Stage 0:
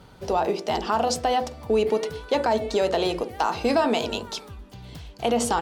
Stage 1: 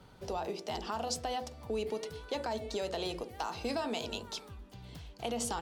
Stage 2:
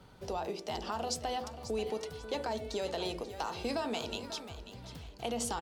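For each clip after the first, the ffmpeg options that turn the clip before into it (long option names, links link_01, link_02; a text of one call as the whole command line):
ffmpeg -i in.wav -filter_complex "[0:a]acrossover=split=140|3000[link_01][link_02][link_03];[link_02]acompressor=threshold=-37dB:ratio=1.5[link_04];[link_01][link_04][link_03]amix=inputs=3:normalize=0,volume=-7.5dB" out.wav
ffmpeg -i in.wav -af "aecho=1:1:540|1080|1620:0.237|0.0711|0.0213" out.wav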